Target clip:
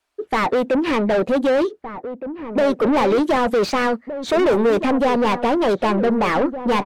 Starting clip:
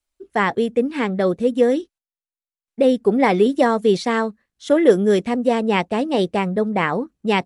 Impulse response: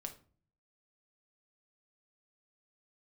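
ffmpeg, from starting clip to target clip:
-filter_complex "[0:a]asetrate=48000,aresample=44100,asplit=2[s0][s1];[s1]highpass=f=720:p=1,volume=39.8,asoftclip=type=tanh:threshold=0.794[s2];[s0][s2]amix=inputs=2:normalize=0,lowpass=f=1400:p=1,volume=0.501,asplit=2[s3][s4];[s4]adelay=1516,volume=0.316,highshelf=f=4000:g=-34.1[s5];[s3][s5]amix=inputs=2:normalize=0,volume=0.422"

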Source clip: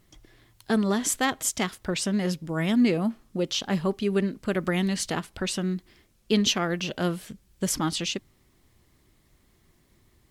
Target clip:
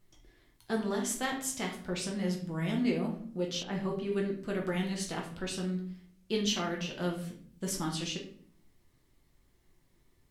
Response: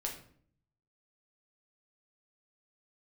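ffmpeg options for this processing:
-filter_complex "[1:a]atrim=start_sample=2205[s0];[0:a][s0]afir=irnorm=-1:irlink=0,asettb=1/sr,asplit=3[s1][s2][s3];[s1]atrim=end=3.634[s4];[s2]atrim=start=3.63:end=4.12,asetpts=PTS-STARTPTS,afade=t=in:d=0.004:c=qsin,afade=t=out:st=0.486:d=0.004:c=qsin,acrossover=split=3400[s5][s6];[s6]acompressor=threshold=0.00224:ratio=4:attack=1:release=60[s7];[s5][s7]amix=inputs=2:normalize=0[s8];[s3]atrim=start=4.116[s9];[s4][s8]acrossfade=d=0.004:c1=hsin:c2=qsin[s10];[s10][s9]acrossfade=d=0.004:c1=qsin:c2=hsin,volume=0.398"

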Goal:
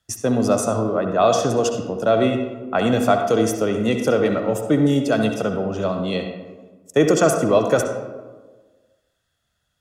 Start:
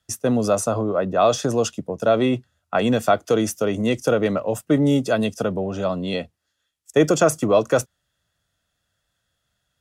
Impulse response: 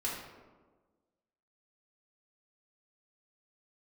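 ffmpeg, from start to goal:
-filter_complex "[0:a]asplit=2[s0][s1];[1:a]atrim=start_sample=2205,lowpass=6800,adelay=64[s2];[s1][s2]afir=irnorm=-1:irlink=0,volume=0.355[s3];[s0][s3]amix=inputs=2:normalize=0"

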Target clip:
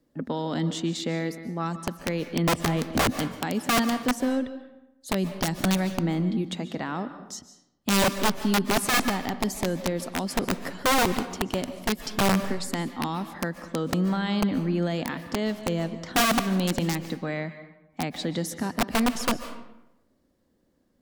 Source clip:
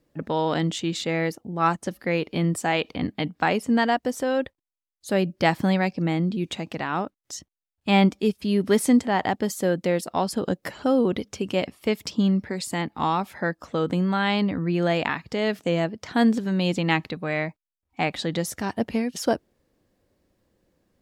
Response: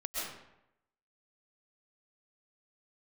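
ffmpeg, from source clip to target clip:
-filter_complex "[0:a]asplit=3[s0][s1][s2];[s0]afade=t=out:st=2.47:d=0.02[s3];[s1]aemphasis=mode=reproduction:type=riaa,afade=t=in:st=2.47:d=0.02,afade=t=out:st=3.16:d=0.02[s4];[s2]afade=t=in:st=3.16:d=0.02[s5];[s3][s4][s5]amix=inputs=3:normalize=0,acrossover=split=280|3000[s6][s7][s8];[s7]acompressor=threshold=0.0501:ratio=10[s9];[s6][s9][s8]amix=inputs=3:normalize=0,equalizer=f=100:t=o:w=0.33:g=-6,equalizer=f=250:t=o:w=0.33:g=9,equalizer=f=2500:t=o:w=0.33:g=-6,aeval=exprs='(mod(5.31*val(0)+1,2)-1)/5.31':c=same,asplit=2[s10][s11];[1:a]atrim=start_sample=2205,asetrate=40131,aresample=44100[s12];[s11][s12]afir=irnorm=-1:irlink=0,volume=0.211[s13];[s10][s13]amix=inputs=2:normalize=0,volume=0.668"

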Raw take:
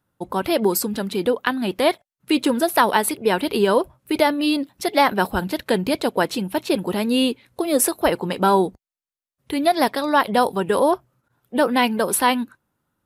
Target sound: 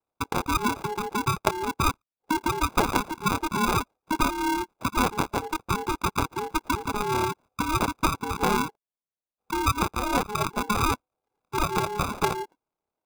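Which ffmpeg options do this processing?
-filter_complex "[0:a]afwtdn=0.0501,equalizer=f=77:w=0.52:g=-13,acompressor=threshold=0.02:ratio=2,acrossover=split=200[s0][s1];[s1]acrusher=samples=36:mix=1:aa=0.000001[s2];[s0][s2]amix=inputs=2:normalize=0,aeval=exprs='val(0)*sin(2*PI*630*n/s)':c=same,volume=2.51"

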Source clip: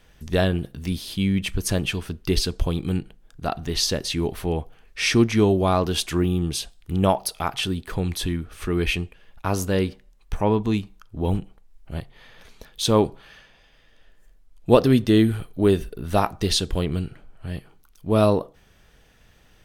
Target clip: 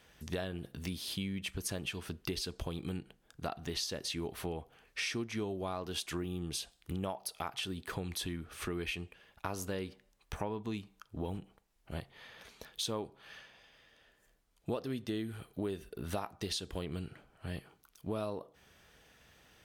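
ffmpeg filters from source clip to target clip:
-af "highpass=56,lowshelf=f=290:g=-6,acompressor=threshold=0.0251:ratio=6,volume=0.708"

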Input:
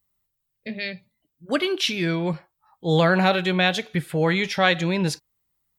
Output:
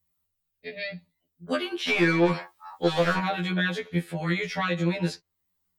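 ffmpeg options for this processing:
-filter_complex "[0:a]asettb=1/sr,asplit=3[s0][s1][s2];[s0]atrim=end=1.884[s3];[s1]atrim=start=1.88:end=3.19,asetpts=PTS-STARTPTS,afade=t=in:d=0.004:c=qsin,afade=t=out:st=1.306:d=0.004:c=qsin,asplit=2[s4][s5];[s5]highpass=f=720:p=1,volume=20,asoftclip=type=tanh:threshold=0.473[s6];[s4][s6]amix=inputs=2:normalize=0,lowpass=f=4800:p=1,volume=0.501[s7];[s2]atrim=start=3.186[s8];[s3][s7]acrossfade=d=0.004:c1=hsin:c2=qsin[s9];[s9][s8]acrossfade=d=0.004:c1=qsin:c2=hsin,acrossover=split=180|2100|6300[s10][s11][s12][s13];[s10]acompressor=threshold=0.0126:ratio=4[s14];[s11]acompressor=threshold=0.112:ratio=4[s15];[s12]acompressor=threshold=0.0178:ratio=4[s16];[s13]acompressor=threshold=0.00282:ratio=4[s17];[s14][s15][s16][s17]amix=inputs=4:normalize=0,afftfilt=real='re*2*eq(mod(b,4),0)':imag='im*2*eq(mod(b,4),0)':win_size=2048:overlap=0.75"

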